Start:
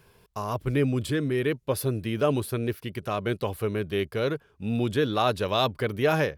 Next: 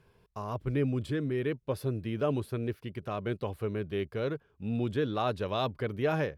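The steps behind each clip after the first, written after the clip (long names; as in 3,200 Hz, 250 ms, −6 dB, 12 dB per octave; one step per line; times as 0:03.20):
low-pass filter 3,400 Hz 6 dB per octave
low-shelf EQ 470 Hz +3 dB
level −7 dB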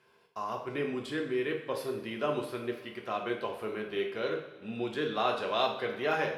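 meter weighting curve A
coupled-rooms reverb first 0.6 s, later 3.9 s, from −21 dB, DRR 0.5 dB
level +1 dB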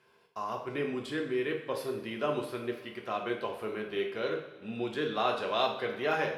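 no processing that can be heard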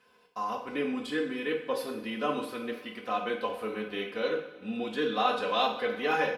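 comb filter 4 ms, depth 84%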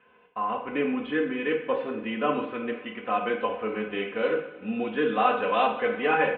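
Butterworth low-pass 3,000 Hz 48 dB per octave
level +4.5 dB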